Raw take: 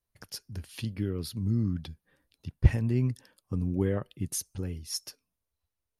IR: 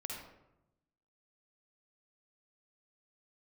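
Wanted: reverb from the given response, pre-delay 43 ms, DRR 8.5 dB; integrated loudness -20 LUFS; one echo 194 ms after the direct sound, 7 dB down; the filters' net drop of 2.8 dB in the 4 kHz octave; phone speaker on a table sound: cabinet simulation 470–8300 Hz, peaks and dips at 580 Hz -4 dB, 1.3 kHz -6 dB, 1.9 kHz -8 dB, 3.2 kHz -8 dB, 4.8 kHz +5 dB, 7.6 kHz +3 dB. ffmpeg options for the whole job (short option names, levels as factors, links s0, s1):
-filter_complex "[0:a]equalizer=f=4000:t=o:g=-7.5,aecho=1:1:194:0.447,asplit=2[s0][s1];[1:a]atrim=start_sample=2205,adelay=43[s2];[s1][s2]afir=irnorm=-1:irlink=0,volume=0.398[s3];[s0][s3]amix=inputs=2:normalize=0,highpass=f=470:w=0.5412,highpass=f=470:w=1.3066,equalizer=f=580:t=q:w=4:g=-4,equalizer=f=1300:t=q:w=4:g=-6,equalizer=f=1900:t=q:w=4:g=-8,equalizer=f=3200:t=q:w=4:g=-8,equalizer=f=4800:t=q:w=4:g=5,equalizer=f=7600:t=q:w=4:g=3,lowpass=f=8300:w=0.5412,lowpass=f=8300:w=1.3066,volume=14.1"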